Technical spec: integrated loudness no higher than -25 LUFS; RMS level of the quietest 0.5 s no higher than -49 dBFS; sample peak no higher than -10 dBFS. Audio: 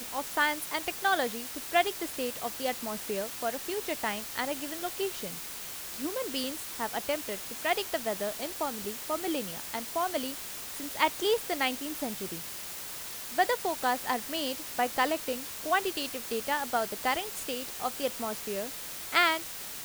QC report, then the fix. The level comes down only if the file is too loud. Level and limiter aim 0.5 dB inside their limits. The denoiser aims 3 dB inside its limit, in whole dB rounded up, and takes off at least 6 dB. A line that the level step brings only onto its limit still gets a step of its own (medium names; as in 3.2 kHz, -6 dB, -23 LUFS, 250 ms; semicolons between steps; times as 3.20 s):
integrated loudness -31.5 LUFS: pass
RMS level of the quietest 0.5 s -40 dBFS: fail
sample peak -9.0 dBFS: fail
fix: noise reduction 12 dB, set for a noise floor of -40 dBFS; peak limiter -10.5 dBFS